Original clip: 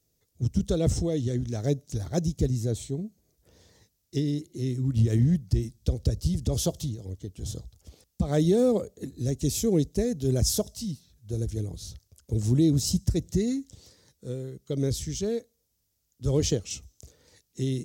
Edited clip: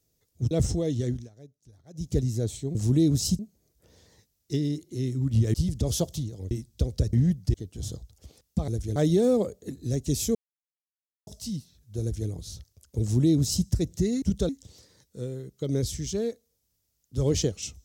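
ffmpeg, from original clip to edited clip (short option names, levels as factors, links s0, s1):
-filter_complex "[0:a]asplit=16[s0][s1][s2][s3][s4][s5][s6][s7][s8][s9][s10][s11][s12][s13][s14][s15];[s0]atrim=end=0.512[s16];[s1]atrim=start=0.778:end=1.56,asetpts=PTS-STARTPTS,afade=t=out:st=0.602:d=0.18:silence=0.0668344[s17];[s2]atrim=start=1.56:end=2.2,asetpts=PTS-STARTPTS,volume=0.0668[s18];[s3]atrim=start=2.2:end=3.022,asetpts=PTS-STARTPTS,afade=t=in:d=0.18:silence=0.0668344[s19];[s4]atrim=start=12.368:end=13.012[s20];[s5]atrim=start=3.018:end=5.172[s21];[s6]atrim=start=6.198:end=7.172[s22];[s7]atrim=start=5.578:end=6.202[s23];[s8]atrim=start=5.168:end=5.582[s24];[s9]atrim=start=7.168:end=8.312[s25];[s10]atrim=start=11.358:end=11.642[s26];[s11]atrim=start=8.308:end=9.7,asetpts=PTS-STARTPTS,afade=t=out:st=1.388:d=0.004:c=hsin[s27];[s12]atrim=start=9.7:end=10.62,asetpts=PTS-STARTPTS,volume=0[s28];[s13]atrim=start=10.62:end=13.572,asetpts=PTS-STARTPTS,afade=t=in:d=0.004:c=hsin[s29];[s14]atrim=start=0.508:end=0.782[s30];[s15]atrim=start=13.568[s31];[s17][s18][s19]concat=n=3:v=0:a=1[s32];[s16][s32]acrossfade=d=0.004:c1=hsin:c2=hsin[s33];[s33][s20]acrossfade=d=0.004:c1=hsin:c2=hsin[s34];[s34][s21]acrossfade=d=0.004:c1=hsin:c2=hsin[s35];[s35][s22]acrossfade=d=0.004:c1=hsin:c2=hsin[s36];[s36][s23]acrossfade=d=0.004:c1=hsin:c2=hsin[s37];[s37][s24]acrossfade=d=0.004:c1=hsin:c2=hsin[s38];[s38][s25]acrossfade=d=0.004:c1=hsin:c2=hsin[s39];[s39][s26]acrossfade=d=0.004:c1=hsin:c2=hsin[s40];[s27][s28][s29]concat=n=3:v=0:a=1[s41];[s40][s41]acrossfade=d=0.004:c1=hsin:c2=hsin[s42];[s42][s30]acrossfade=d=0.004:c1=hsin:c2=hsin[s43];[s43][s31]acrossfade=d=0.004:c1=hsin:c2=hsin"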